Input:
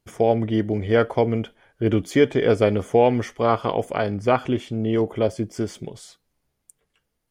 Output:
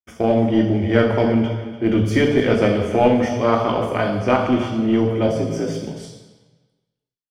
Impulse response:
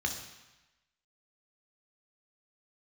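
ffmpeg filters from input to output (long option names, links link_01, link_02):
-filter_complex "[0:a]asettb=1/sr,asplit=3[link_01][link_02][link_03];[link_01]atrim=end=5.274[link_04];[link_02]atrim=start=5.27:end=5.84,asetpts=PTS-STARTPTS,afade=type=in:duration=0.004:curve=qsin,afade=type=out:start_time=0.566:duration=0.004:curve=qsin,afreqshift=57[link_05];[link_03]atrim=start=5.836[link_06];[link_04][link_05]acrossfade=duration=0.004:curve1=hsin:curve2=qsin[link_07];[link_07][link_06]acrossfade=duration=0.004:curve1=qsin:curve2=hsin,aecho=1:1:297|594|891:0.178|0.0462|0.012,agate=range=-37dB:threshold=-42dB:ratio=16:detection=peak[link_08];[1:a]atrim=start_sample=2205,asetrate=37044,aresample=44100[link_09];[link_08][link_09]afir=irnorm=-1:irlink=0,asplit=2[link_10][link_11];[link_11]aeval=exprs='clip(val(0),-1,0.178)':channel_layout=same,volume=-6dB[link_12];[link_10][link_12]amix=inputs=2:normalize=0,volume=-6dB"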